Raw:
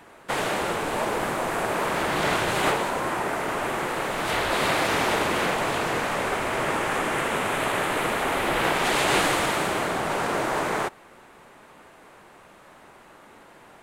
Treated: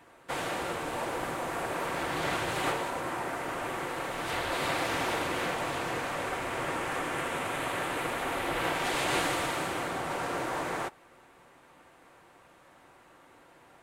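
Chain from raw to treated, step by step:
notch comb filter 210 Hz
level −6 dB

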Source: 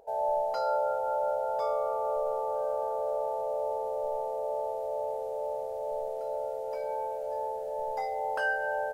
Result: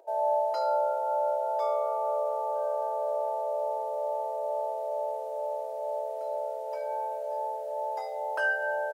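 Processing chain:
elliptic high-pass filter 330 Hz, stop band 50 dB
comb filter 3.2 ms, depth 52%
on a send: convolution reverb, pre-delay 72 ms, DRR 16 dB

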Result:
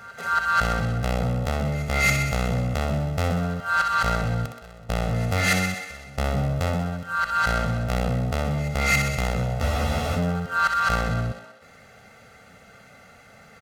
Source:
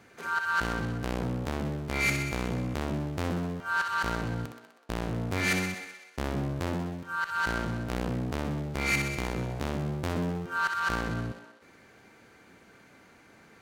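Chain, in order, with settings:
comb filter 1.5 ms, depth 92%
echo ahead of the sound 277 ms −20 dB
frozen spectrum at 0:09.64, 0.51 s
level +4.5 dB

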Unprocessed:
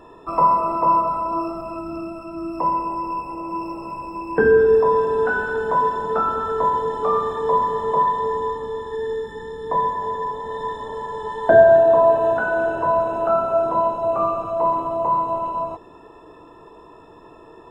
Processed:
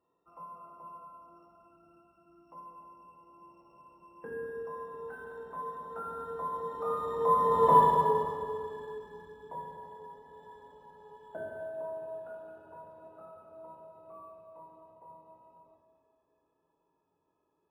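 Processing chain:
source passing by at 0:07.74, 11 m/s, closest 1.9 metres
high-pass filter 53 Hz
notch filter 1,800 Hz, Q 23
convolution reverb RT60 2.4 s, pre-delay 3 ms, DRR 1.5 dB
linearly interpolated sample-rate reduction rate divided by 4×
level −1 dB

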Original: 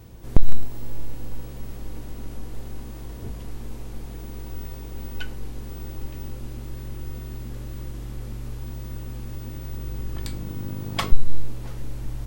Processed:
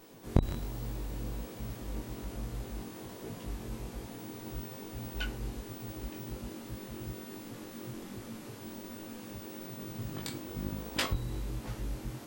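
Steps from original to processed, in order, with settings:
gate on every frequency bin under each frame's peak −10 dB weak
chorus effect 1.2 Hz, delay 18 ms, depth 4.9 ms
level +2 dB

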